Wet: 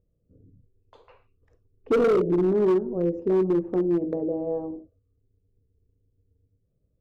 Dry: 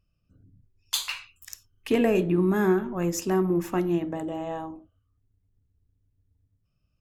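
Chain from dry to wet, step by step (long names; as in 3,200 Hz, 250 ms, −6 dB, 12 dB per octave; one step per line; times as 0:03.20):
in parallel at +0.5 dB: downward compressor 10 to 1, threshold −33 dBFS, peak gain reduction 16.5 dB
on the sum: low-pass with resonance 470 Hz, resonance Q 4.9
gain into a clipping stage and back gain 11.5 dB
level −5.5 dB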